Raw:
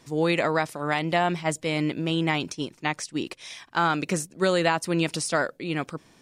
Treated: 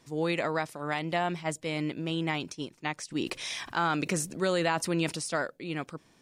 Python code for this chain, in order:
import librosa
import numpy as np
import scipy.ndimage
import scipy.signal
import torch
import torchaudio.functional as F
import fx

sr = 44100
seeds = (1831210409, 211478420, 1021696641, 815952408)

y = fx.env_flatten(x, sr, amount_pct=50, at=(3.1, 5.11), fade=0.02)
y = y * librosa.db_to_amplitude(-6.0)